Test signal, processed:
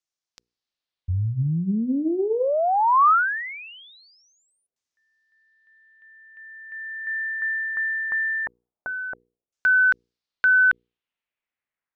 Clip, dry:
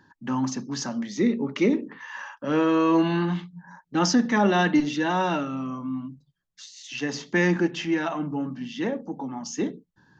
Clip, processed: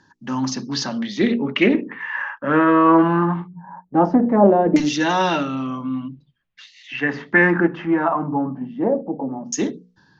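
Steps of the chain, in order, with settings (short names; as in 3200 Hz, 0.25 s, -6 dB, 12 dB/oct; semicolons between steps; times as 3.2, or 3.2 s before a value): notches 60/120/180/240/300/360/420/480 Hz; AGC gain up to 4 dB; LFO low-pass saw down 0.21 Hz 500–6600 Hz; Doppler distortion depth 0.15 ms; gain +1.5 dB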